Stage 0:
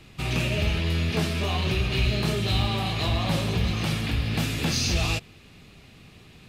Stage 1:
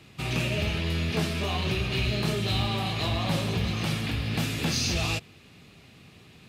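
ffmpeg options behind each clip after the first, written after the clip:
-af "highpass=77,volume=-1.5dB"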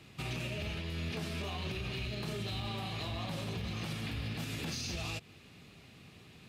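-af "alimiter=level_in=2dB:limit=-24dB:level=0:latency=1:release=134,volume=-2dB,volume=-3.5dB"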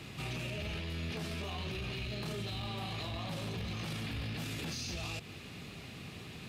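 -af "alimiter=level_in=16dB:limit=-24dB:level=0:latency=1:release=17,volume=-16dB,volume=8.5dB"

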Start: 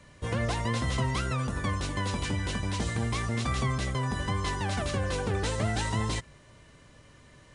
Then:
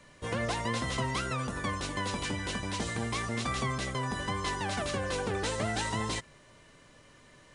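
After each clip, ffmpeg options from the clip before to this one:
-af "equalizer=f=68:t=o:w=2.3:g=-9.5"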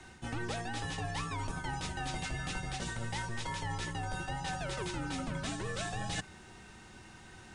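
-af "areverse,acompressor=threshold=-39dB:ratio=6,areverse,afreqshift=-230,volume=4.5dB"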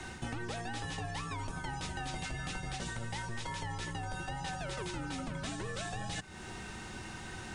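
-af "acompressor=threshold=-45dB:ratio=6,volume=8.5dB"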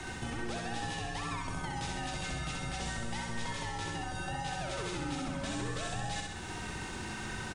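-filter_complex "[0:a]asplit=2[a][b];[b]alimiter=level_in=10.5dB:limit=-24dB:level=0:latency=1,volume=-10.5dB,volume=2.5dB[c];[a][c]amix=inputs=2:normalize=0,aecho=1:1:65|130|195|260|325|390|455|520|585:0.708|0.418|0.246|0.145|0.0858|0.0506|0.0299|0.0176|0.0104,volume=-5dB"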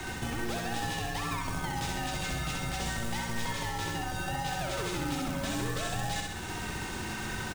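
-af "acrusher=bits=3:mode=log:mix=0:aa=0.000001,volume=3.5dB"

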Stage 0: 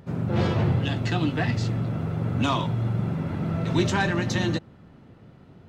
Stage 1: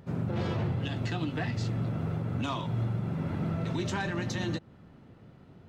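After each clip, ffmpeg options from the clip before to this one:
-af "alimiter=limit=-19dB:level=0:latency=1:release=174,volume=-3.5dB"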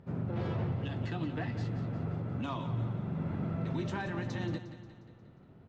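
-filter_complex "[0:a]aemphasis=mode=reproduction:type=75kf,asplit=2[a][b];[b]aecho=0:1:178|356|534|712|890|1068:0.251|0.136|0.0732|0.0396|0.0214|0.0115[c];[a][c]amix=inputs=2:normalize=0,volume=-3.5dB"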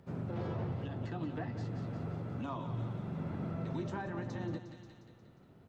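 -filter_complex "[0:a]acrossover=split=310|1600[a][b][c];[c]acompressor=threshold=-60dB:ratio=6[d];[a][b][d]amix=inputs=3:normalize=0,bass=f=250:g=-3,treble=f=4k:g=8,volume=-1.5dB"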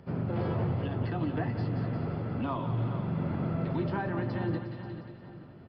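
-filter_complex "[0:a]aresample=11025,aresample=44100,bandreject=f=3.8k:w=8.3,asplit=2[a][b];[b]adelay=434,lowpass=f=3.7k:p=1,volume=-11dB,asplit=2[c][d];[d]adelay=434,lowpass=f=3.7k:p=1,volume=0.43,asplit=2[e][f];[f]adelay=434,lowpass=f=3.7k:p=1,volume=0.43,asplit=2[g][h];[h]adelay=434,lowpass=f=3.7k:p=1,volume=0.43[i];[a][c][e][g][i]amix=inputs=5:normalize=0,volume=7dB"

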